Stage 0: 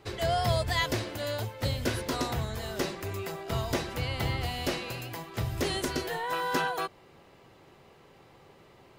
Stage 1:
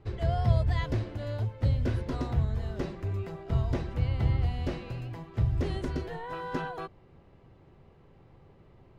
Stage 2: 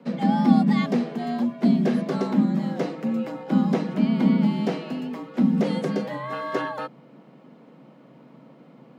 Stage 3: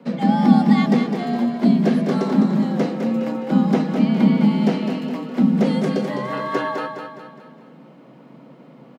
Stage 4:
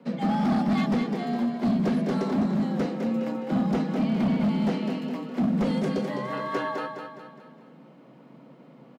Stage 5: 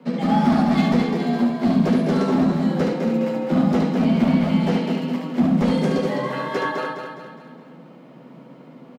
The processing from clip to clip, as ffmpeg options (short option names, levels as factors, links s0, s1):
-af "aemphasis=mode=reproduction:type=riaa,volume=0.447"
-af "afreqshift=130,volume=2.11"
-af "aecho=1:1:207|414|621|828|1035:0.473|0.218|0.1|0.0461|0.0212,volume=1.5"
-af "asoftclip=type=hard:threshold=0.188,volume=0.531"
-af "aecho=1:1:12|73:0.668|0.708,volume=1.58"